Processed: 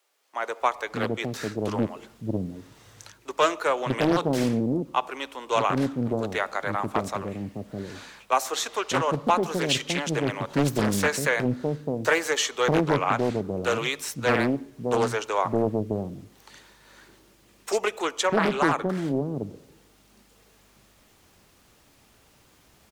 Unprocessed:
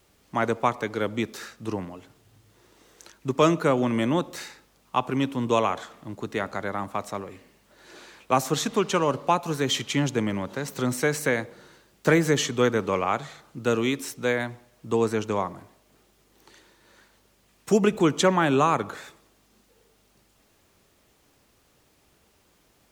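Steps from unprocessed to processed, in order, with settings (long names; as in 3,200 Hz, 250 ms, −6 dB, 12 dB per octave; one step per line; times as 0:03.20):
multiband delay without the direct sound highs, lows 610 ms, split 440 Hz
automatic gain control gain up to 12 dB
highs frequency-modulated by the lows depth 0.76 ms
level −7 dB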